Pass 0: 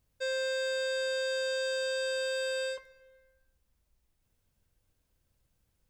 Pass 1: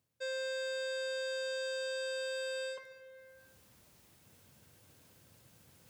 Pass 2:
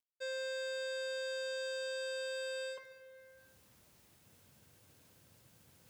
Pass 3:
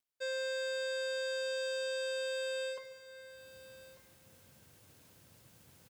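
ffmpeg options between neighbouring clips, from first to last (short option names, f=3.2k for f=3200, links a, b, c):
-af "highpass=f=100:w=0.5412,highpass=f=100:w=1.3066,areverse,acompressor=mode=upward:threshold=-38dB:ratio=2.5,areverse,volume=-5.5dB"
-af "acrusher=bits=11:mix=0:aa=0.000001,volume=-2dB"
-af "aecho=1:1:1196:0.133,volume=3dB"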